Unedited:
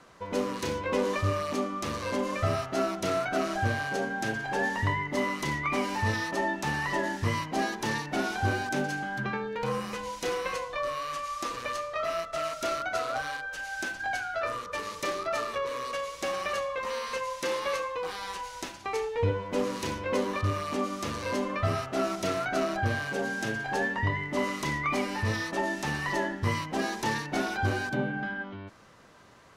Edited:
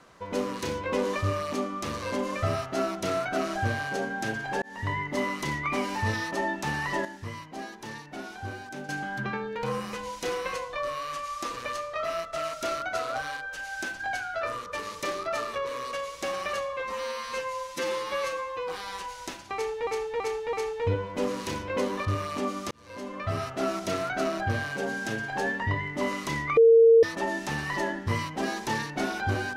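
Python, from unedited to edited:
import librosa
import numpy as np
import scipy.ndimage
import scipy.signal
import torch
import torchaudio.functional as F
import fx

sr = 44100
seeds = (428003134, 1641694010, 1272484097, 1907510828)

y = fx.edit(x, sr, fx.fade_in_span(start_s=4.62, length_s=0.36),
    fx.clip_gain(start_s=7.05, length_s=1.84, db=-9.5),
    fx.stretch_span(start_s=16.73, length_s=1.3, factor=1.5),
    fx.repeat(start_s=18.89, length_s=0.33, count=4),
    fx.fade_in_span(start_s=21.07, length_s=0.8),
    fx.bleep(start_s=24.93, length_s=0.46, hz=457.0, db=-12.5), tone=tone)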